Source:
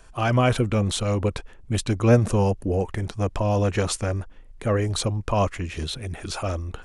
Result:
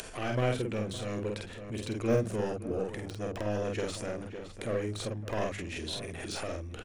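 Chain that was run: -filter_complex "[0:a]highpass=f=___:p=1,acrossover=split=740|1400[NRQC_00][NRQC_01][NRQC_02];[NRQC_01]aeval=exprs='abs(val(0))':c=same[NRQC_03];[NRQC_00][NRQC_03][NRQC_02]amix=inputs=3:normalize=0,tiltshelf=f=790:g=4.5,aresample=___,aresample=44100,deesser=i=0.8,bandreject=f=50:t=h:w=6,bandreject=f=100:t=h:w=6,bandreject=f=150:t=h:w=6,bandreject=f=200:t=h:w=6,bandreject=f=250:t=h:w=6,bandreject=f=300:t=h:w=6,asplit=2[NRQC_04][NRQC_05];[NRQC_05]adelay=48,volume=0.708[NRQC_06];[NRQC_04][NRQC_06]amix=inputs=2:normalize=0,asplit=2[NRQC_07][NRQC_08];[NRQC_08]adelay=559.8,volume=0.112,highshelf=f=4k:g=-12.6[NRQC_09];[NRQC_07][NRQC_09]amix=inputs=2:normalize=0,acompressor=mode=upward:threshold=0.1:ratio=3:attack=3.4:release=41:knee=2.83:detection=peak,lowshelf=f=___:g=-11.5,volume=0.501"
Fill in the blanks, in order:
120, 32000, 340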